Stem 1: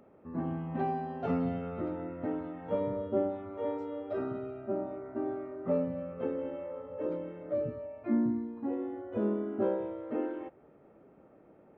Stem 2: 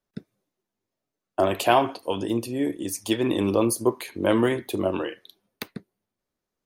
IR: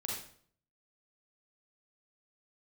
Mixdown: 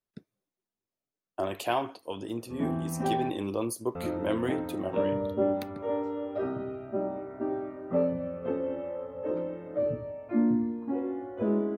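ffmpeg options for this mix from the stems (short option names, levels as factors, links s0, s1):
-filter_complex "[0:a]adelay=2250,volume=1.19,asplit=3[s0][s1][s2];[s0]atrim=end=3.3,asetpts=PTS-STARTPTS,afade=t=out:st=3.296:d=0.004:c=hsin[s3];[s1]atrim=start=3.3:end=3.95,asetpts=PTS-STARTPTS,volume=0[s4];[s2]atrim=start=3.95,asetpts=PTS-STARTPTS,afade=t=in:d=0.004:c=hsin[s5];[s3][s4][s5]concat=n=3:v=0:a=1,asplit=2[s6][s7];[s7]volume=0.282[s8];[1:a]volume=0.335[s9];[2:a]atrim=start_sample=2205[s10];[s8][s10]afir=irnorm=-1:irlink=0[s11];[s6][s9][s11]amix=inputs=3:normalize=0"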